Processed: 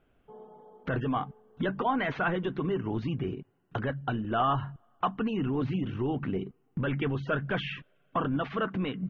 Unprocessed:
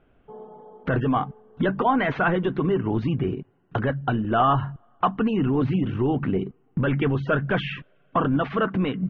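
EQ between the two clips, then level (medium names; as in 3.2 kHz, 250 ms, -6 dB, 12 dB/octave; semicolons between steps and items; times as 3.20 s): treble shelf 3.7 kHz +9 dB; -7.5 dB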